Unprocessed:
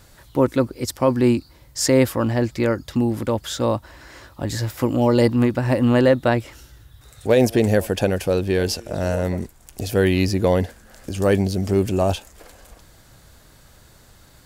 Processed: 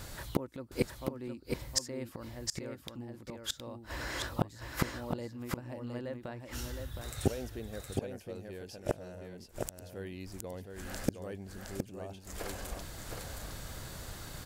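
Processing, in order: flipped gate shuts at -19 dBFS, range -30 dB; echo 0.715 s -5 dB; gain +4.5 dB

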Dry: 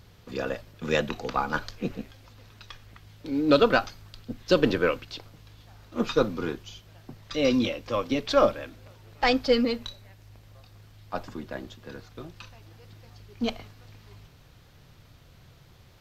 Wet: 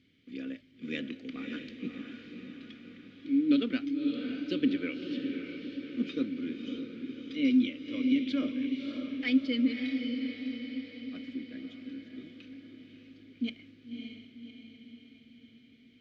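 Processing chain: vowel filter i; diffused feedback echo 0.581 s, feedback 57%, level -5.5 dB; gain +3.5 dB

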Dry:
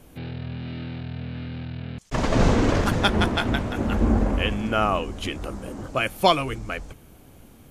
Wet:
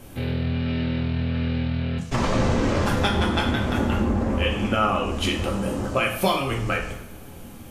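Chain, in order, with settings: compressor 4:1, threshold -27 dBFS, peak gain reduction 13 dB; two-slope reverb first 0.62 s, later 1.7 s, DRR -0.5 dB; gain +5 dB

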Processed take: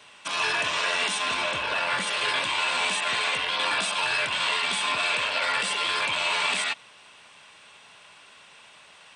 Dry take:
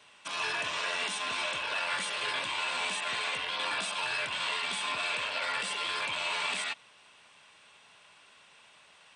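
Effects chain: 1.34–2.07 tilt -1.5 dB/oct; gain +7 dB

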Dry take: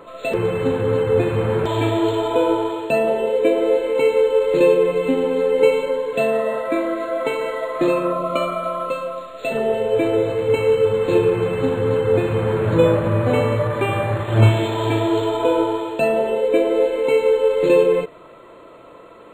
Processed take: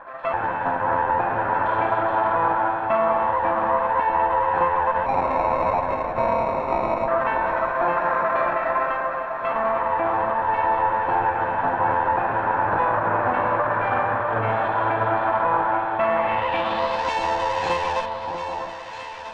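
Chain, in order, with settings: minimum comb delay 1.2 ms; tone controls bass -15 dB, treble -1 dB; limiter -16 dBFS, peak gain reduction 8 dB; 5.06–7.08 sample-rate reducer 1600 Hz, jitter 0%; low-pass sweep 1400 Hz -> 5800 Hz, 15.93–17.1; echo with dull and thin repeats by turns 0.647 s, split 1200 Hz, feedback 64%, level -5 dB

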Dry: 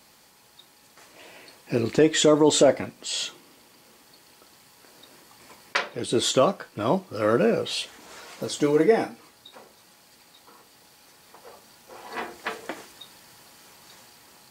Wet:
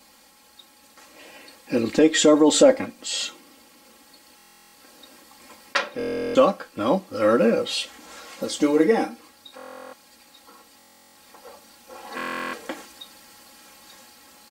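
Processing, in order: comb 3.7 ms, depth 81%; stuck buffer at 4.37/5.98/9.56/10.78/12.16, samples 1024, times 15

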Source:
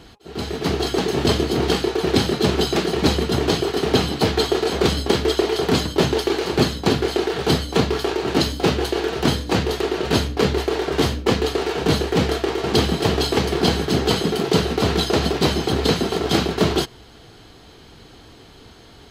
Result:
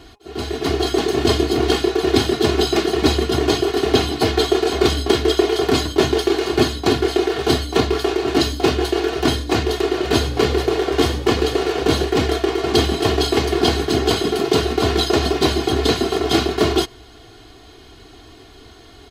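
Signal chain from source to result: comb 2.8 ms, depth 63%; 9.82–12.05 frequency-shifting echo 0.101 s, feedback 37%, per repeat +53 Hz, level -13 dB

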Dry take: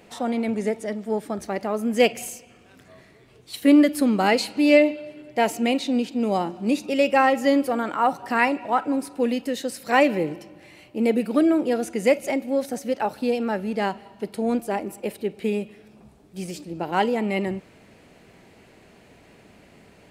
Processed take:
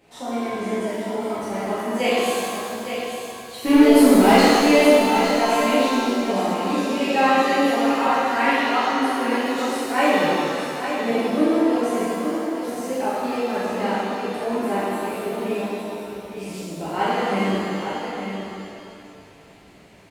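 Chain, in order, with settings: 3.61–4.4 sample leveller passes 2; 12.03–12.62 double band-pass 2800 Hz, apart 1.9 oct; on a send: echo 0.859 s -8 dB; on the sum: shimmer reverb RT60 2.1 s, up +7 st, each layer -8 dB, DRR -11 dB; gain -10 dB

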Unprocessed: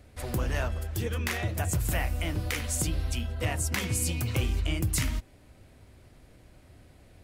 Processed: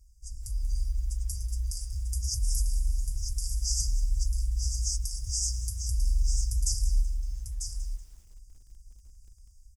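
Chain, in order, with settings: passive tone stack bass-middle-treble 6-0-2; comb 4.3 ms, depth 72%; in parallel at 0 dB: limiter -38.5 dBFS, peak gain reduction 10.5 dB; on the sum: AGC gain up to 5.5 dB; companded quantiser 8-bit; brick-wall FIR band-stop 150–6300 Hz; echo 0.7 s -7 dB; on a send at -22 dB: reverb RT60 0.45 s, pre-delay 3 ms; on the sum: speed mistake 45 rpm record played at 33 rpm; lo-fi delay 0.188 s, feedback 35%, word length 9-bit, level -15 dB; gain +4 dB

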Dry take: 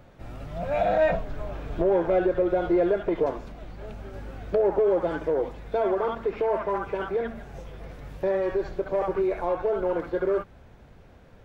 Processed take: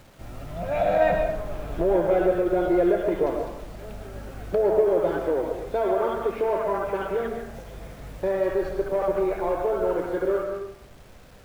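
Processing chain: bit-crush 9-bit; on a send: reverb RT60 0.70 s, pre-delay 80 ms, DRR 4 dB

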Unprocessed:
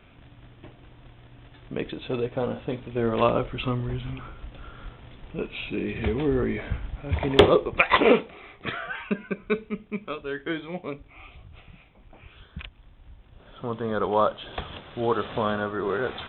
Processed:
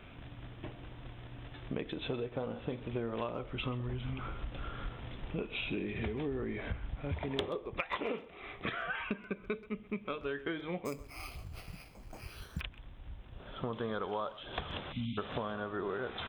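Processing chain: 13.73–14.39 high shelf 2000 Hz +9 dB; 14.92–15.18 spectral delete 300–2000 Hz; compressor 10:1, threshold -35 dBFS, peak gain reduction 25 dB; speakerphone echo 0.13 s, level -17 dB; 10.85–12.61 careless resampling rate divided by 6×, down filtered, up hold; gain +1.5 dB

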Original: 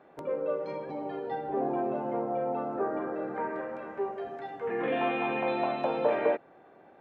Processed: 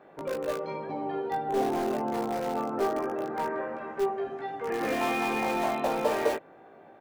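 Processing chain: in parallel at -12 dB: wrapped overs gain 25 dB; on the sum: doubler 18 ms -4 dB

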